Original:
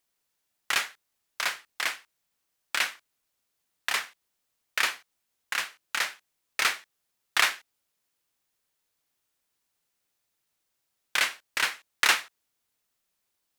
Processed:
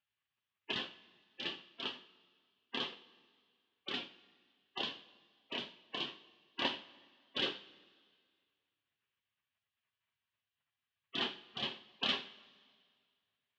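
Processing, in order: cabinet simulation 210–2100 Hz, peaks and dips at 290 Hz +5 dB, 490 Hz +4 dB, 1.1 kHz -6 dB, 1.7 kHz -9 dB; spectral gate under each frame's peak -15 dB weak; two-slope reverb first 0.38 s, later 2 s, from -18 dB, DRR 6 dB; trim +11 dB

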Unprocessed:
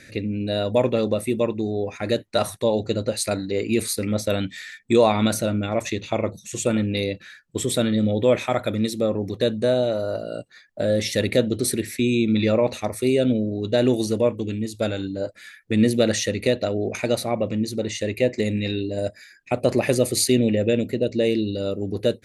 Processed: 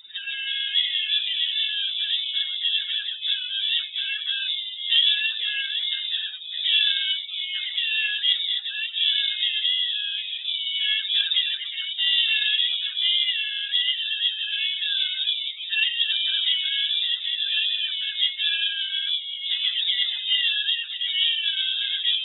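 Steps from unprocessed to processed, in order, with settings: spectrum inverted on a logarithmic axis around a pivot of 460 Hz; ever faster or slower copies 100 ms, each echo -5 st, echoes 3; Chebyshev shaper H 2 -24 dB, 3 -26 dB, 8 -44 dB, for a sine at -5 dBFS; frequency inversion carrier 3.7 kHz; trim -2 dB

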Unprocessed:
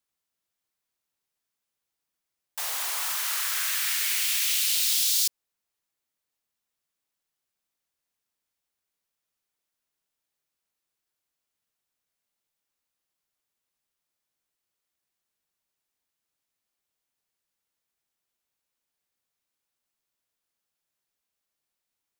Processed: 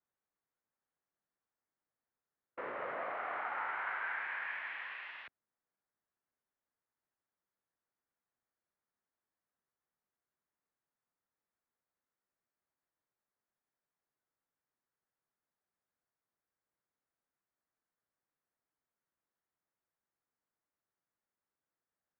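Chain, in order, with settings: formant shift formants -3 st; mistuned SSB -210 Hz 280–2100 Hz; trim -2 dB

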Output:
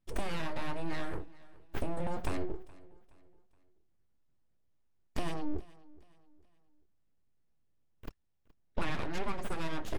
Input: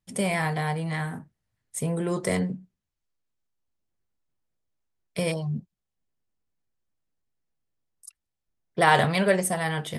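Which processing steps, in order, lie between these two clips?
full-wave rectifier; treble shelf 6.8 kHz -11 dB; compression 6:1, threshold -33 dBFS, peak gain reduction 17 dB; bass shelf 460 Hz +6.5 dB; feedback delay 421 ms, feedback 38%, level -22 dB

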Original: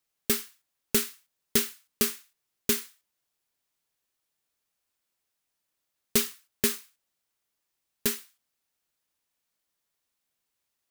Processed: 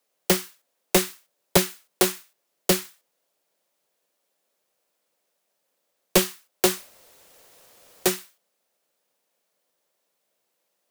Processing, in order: steep high-pass 180 Hz 96 dB/octave; frequency shift -43 Hz; 6.70–8.12 s: word length cut 10-bit, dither triangular; peaking EQ 550 Hz +13 dB 1 oct; loudspeaker Doppler distortion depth 0.77 ms; trim +5 dB

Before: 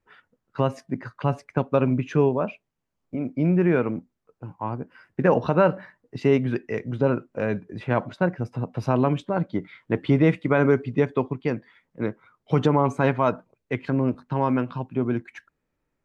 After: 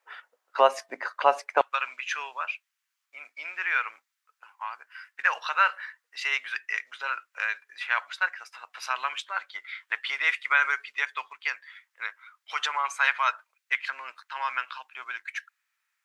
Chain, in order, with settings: high-pass 610 Hz 24 dB/octave, from 1.61 s 1.4 kHz; trim +9 dB

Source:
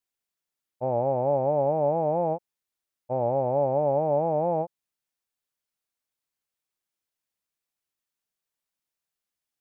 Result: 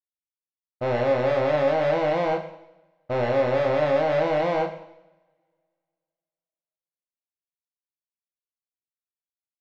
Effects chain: local Wiener filter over 41 samples; resonant high shelf 1.5 kHz -7.5 dB, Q 3; band-stop 460 Hz, Q 12; waveshaping leveller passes 5; distance through air 200 m; doubling 33 ms -5 dB; two-slope reverb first 0.84 s, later 2.4 s, from -28 dB, DRR 7 dB; trim -7 dB

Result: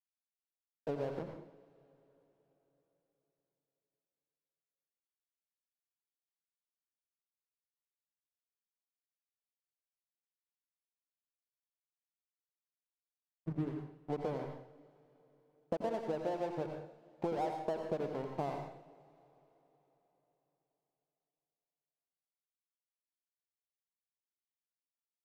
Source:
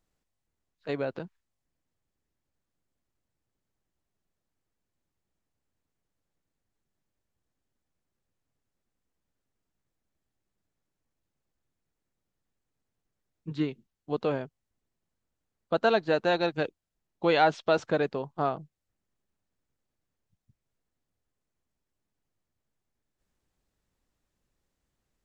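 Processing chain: steep low-pass 1 kHz 48 dB/octave; hum notches 60/120/180/240/300 Hz; compression 10:1, threshold -36 dBFS, peak gain reduction 17.5 dB; crossover distortion -50 dBFS; on a send: reverberation, pre-delay 81 ms, DRR 3 dB; on the sum: trim +3.5 dB

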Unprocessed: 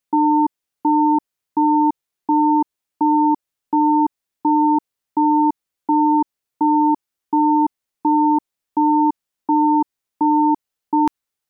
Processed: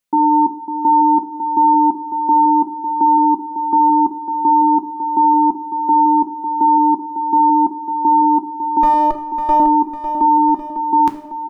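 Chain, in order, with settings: 8.83–9.60 s: comb filter that takes the minimum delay 5.6 ms; feedback delay 551 ms, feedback 55%, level -9.5 dB; two-slope reverb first 0.53 s, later 1.9 s, from -18 dB, DRR 6.5 dB; trim +1.5 dB

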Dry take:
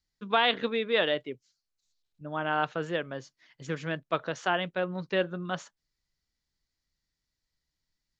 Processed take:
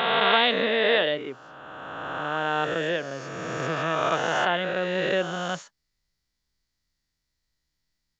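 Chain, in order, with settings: reverse spectral sustain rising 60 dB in 2.73 s

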